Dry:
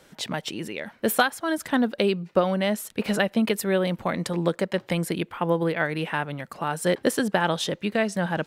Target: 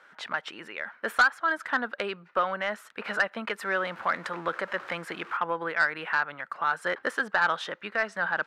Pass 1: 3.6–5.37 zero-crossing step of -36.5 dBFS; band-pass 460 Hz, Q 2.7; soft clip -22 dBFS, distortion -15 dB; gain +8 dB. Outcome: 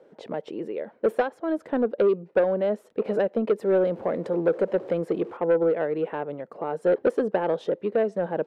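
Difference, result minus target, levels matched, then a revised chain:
500 Hz band +9.0 dB
3.6–5.37 zero-crossing step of -36.5 dBFS; band-pass 1400 Hz, Q 2.7; soft clip -22 dBFS, distortion -14 dB; gain +8 dB

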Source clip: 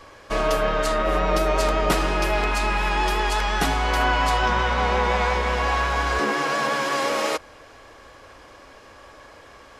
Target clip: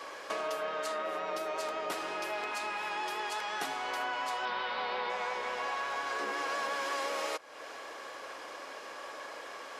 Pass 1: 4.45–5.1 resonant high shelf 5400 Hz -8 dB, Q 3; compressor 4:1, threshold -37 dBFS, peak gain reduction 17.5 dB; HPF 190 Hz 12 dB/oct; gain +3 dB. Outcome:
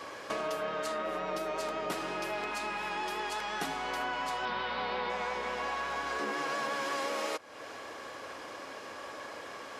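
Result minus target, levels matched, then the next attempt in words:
250 Hz band +5.5 dB
4.45–5.1 resonant high shelf 5400 Hz -8 dB, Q 3; compressor 4:1, threshold -37 dBFS, peak gain reduction 17.5 dB; HPF 400 Hz 12 dB/oct; gain +3 dB

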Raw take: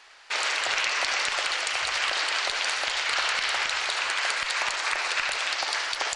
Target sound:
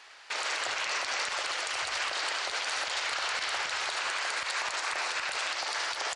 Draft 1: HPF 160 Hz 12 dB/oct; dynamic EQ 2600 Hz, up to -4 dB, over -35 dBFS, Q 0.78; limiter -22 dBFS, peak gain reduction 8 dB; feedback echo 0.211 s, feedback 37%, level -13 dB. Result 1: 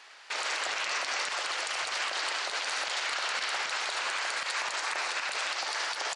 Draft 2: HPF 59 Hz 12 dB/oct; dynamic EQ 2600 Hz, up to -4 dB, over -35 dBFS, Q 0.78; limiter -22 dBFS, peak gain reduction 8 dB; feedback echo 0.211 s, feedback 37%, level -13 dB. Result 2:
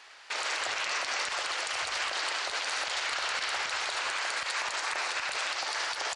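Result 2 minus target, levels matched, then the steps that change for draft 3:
echo 70 ms early
change: feedback echo 0.281 s, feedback 37%, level -13 dB

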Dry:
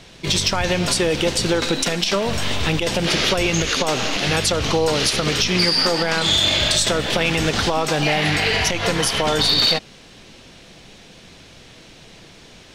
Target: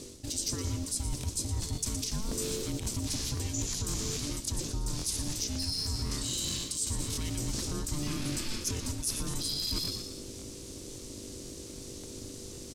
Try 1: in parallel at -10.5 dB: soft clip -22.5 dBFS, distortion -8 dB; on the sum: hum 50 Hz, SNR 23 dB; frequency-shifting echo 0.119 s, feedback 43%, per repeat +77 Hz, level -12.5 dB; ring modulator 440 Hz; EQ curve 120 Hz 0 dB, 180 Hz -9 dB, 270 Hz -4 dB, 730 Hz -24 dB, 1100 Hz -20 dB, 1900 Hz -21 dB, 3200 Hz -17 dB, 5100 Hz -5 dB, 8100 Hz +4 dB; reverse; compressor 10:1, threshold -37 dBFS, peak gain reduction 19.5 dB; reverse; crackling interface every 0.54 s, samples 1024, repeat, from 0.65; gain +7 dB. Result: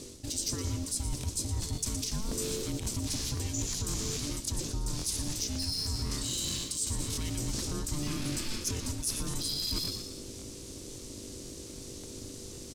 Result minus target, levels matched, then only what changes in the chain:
soft clip: distortion +11 dB
change: soft clip -11.5 dBFS, distortion -19 dB

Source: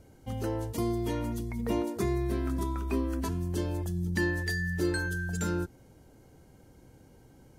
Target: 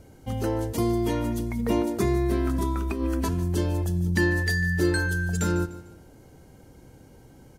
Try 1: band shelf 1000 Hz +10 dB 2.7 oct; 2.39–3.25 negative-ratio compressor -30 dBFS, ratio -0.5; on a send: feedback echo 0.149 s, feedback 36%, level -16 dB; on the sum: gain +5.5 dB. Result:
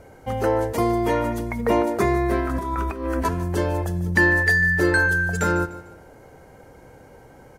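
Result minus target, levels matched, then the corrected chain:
1000 Hz band +5.0 dB
2.39–3.25 negative-ratio compressor -30 dBFS, ratio -0.5; on a send: feedback echo 0.149 s, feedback 36%, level -16 dB; on the sum: gain +5.5 dB

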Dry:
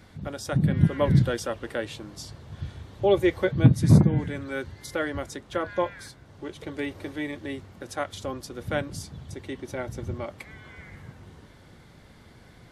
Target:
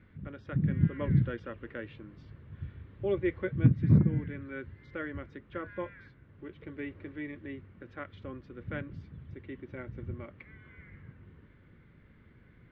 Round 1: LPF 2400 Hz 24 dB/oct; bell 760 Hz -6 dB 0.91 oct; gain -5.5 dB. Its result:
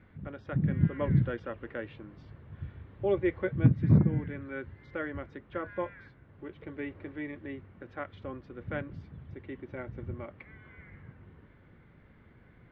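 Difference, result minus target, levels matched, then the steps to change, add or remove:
1000 Hz band +4.0 dB
change: bell 760 Hz -14.5 dB 0.91 oct

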